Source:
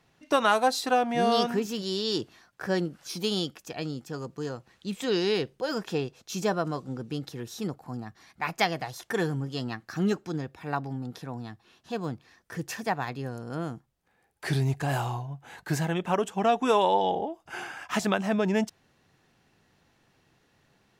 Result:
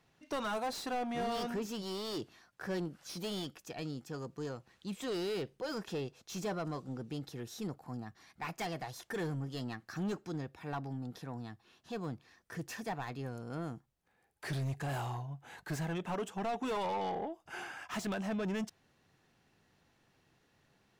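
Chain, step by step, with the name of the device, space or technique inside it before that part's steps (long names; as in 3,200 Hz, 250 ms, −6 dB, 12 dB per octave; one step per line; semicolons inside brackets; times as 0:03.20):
saturation between pre-emphasis and de-emphasis (high-shelf EQ 2,500 Hz +11.5 dB; soft clipping −26 dBFS, distortion −7 dB; high-shelf EQ 2,500 Hz −11.5 dB)
level −5 dB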